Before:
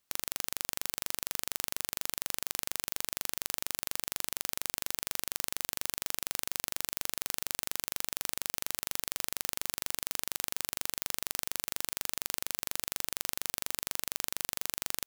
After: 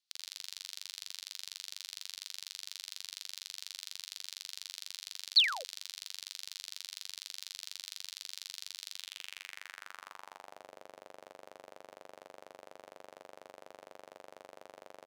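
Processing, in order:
flutter between parallel walls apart 9 metres, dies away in 0.37 s
sound drawn into the spectrogram fall, 0:05.36–0:05.64, 450–4,800 Hz −19 dBFS
band-pass filter sweep 4,200 Hz → 580 Hz, 0:08.91–0:10.71

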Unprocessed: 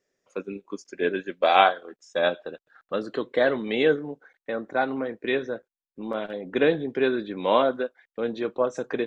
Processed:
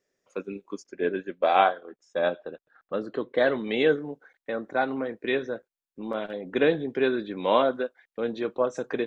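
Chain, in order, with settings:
0:00.83–0:03.38: high-shelf EQ 2,300 Hz −10.5 dB
level −1 dB

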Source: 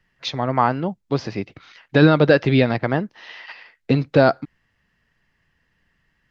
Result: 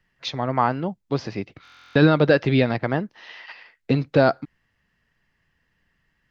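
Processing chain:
buffer that repeats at 0:01.63, samples 1,024, times 13
level −2.5 dB

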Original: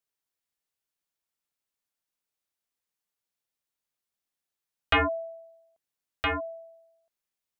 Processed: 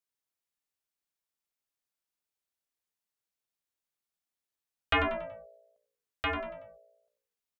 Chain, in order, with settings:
echo with shifted repeats 94 ms, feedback 39%, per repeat −59 Hz, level −10.5 dB
level −4 dB

